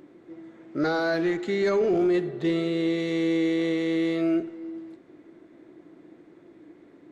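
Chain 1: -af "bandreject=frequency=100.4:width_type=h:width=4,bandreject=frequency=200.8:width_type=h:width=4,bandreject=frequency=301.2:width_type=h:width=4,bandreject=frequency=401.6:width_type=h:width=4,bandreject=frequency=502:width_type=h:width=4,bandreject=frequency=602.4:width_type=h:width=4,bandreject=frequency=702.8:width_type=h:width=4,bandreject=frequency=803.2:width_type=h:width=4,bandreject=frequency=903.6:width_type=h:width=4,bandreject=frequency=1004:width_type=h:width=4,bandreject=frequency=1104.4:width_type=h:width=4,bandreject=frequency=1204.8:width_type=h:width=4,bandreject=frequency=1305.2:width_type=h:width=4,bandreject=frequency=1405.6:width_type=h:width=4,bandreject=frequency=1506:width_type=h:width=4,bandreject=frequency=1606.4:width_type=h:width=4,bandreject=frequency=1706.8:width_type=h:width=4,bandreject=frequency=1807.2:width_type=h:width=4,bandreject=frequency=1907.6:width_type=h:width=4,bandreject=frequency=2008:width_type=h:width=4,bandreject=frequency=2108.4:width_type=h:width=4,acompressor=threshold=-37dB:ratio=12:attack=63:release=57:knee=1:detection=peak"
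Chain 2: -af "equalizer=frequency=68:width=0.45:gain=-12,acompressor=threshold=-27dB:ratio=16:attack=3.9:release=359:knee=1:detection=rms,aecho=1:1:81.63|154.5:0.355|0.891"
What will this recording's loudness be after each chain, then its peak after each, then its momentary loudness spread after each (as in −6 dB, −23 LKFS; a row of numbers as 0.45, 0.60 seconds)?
−36.0, −30.0 LKFS; −23.0, −19.0 dBFS; 17, 20 LU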